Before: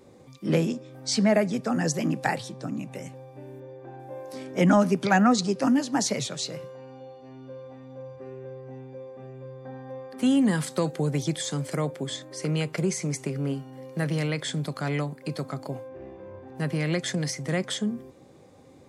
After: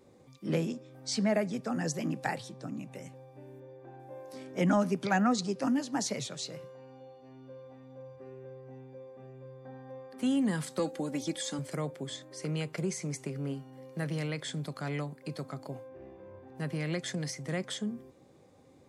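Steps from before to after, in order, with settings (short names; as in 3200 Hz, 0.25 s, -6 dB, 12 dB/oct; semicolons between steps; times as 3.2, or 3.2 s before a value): 10.79–11.59 comb 3.6 ms, depth 75%; gain -7 dB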